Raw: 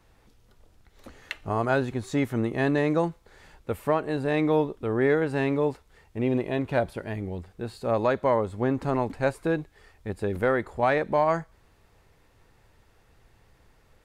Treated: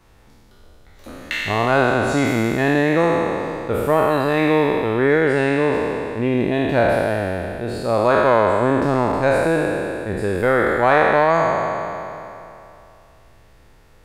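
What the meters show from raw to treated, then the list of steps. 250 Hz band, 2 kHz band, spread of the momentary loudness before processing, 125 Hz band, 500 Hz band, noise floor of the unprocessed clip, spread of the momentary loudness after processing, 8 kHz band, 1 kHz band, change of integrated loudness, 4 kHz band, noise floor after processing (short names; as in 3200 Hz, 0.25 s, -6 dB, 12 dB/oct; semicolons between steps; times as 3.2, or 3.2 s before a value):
+7.0 dB, +11.5 dB, 11 LU, +6.5 dB, +8.5 dB, -61 dBFS, 10 LU, n/a, +10.5 dB, +8.0 dB, +12.0 dB, -49 dBFS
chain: spectral trails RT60 2.83 s; gain +4.5 dB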